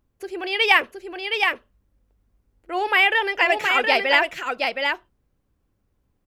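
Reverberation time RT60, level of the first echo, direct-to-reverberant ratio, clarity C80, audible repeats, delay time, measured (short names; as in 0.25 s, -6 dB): none, -4.5 dB, none, none, 1, 0.719 s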